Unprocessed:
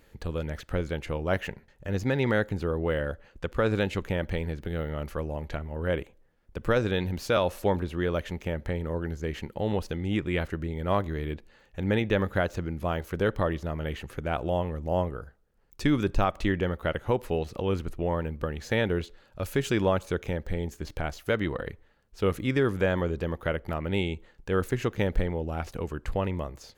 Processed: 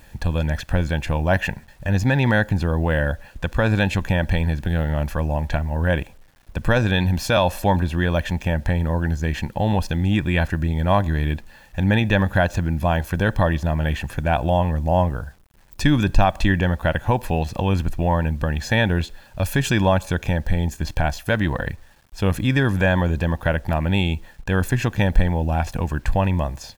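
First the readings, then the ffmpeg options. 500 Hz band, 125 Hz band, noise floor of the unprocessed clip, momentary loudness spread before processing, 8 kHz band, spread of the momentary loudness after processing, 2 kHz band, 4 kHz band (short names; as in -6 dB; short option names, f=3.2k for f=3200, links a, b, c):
+4.0 dB, +11.0 dB, -61 dBFS, 9 LU, +10.5 dB, 6 LU, +9.5 dB, +9.0 dB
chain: -filter_complex "[0:a]aecho=1:1:1.2:0.64,asplit=2[a][b];[b]alimiter=limit=-21dB:level=0:latency=1:release=69,volume=-2dB[c];[a][c]amix=inputs=2:normalize=0,acrusher=bits=9:mix=0:aa=0.000001,volume=4dB"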